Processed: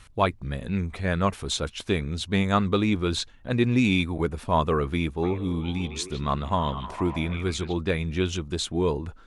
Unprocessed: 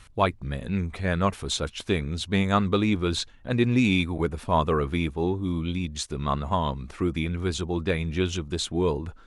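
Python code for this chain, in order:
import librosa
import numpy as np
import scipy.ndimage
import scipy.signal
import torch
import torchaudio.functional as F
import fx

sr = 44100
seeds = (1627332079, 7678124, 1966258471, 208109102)

y = fx.echo_stepped(x, sr, ms=154, hz=2500.0, octaves=-0.7, feedback_pct=70, wet_db=-4.0, at=(5.22, 7.72), fade=0.02)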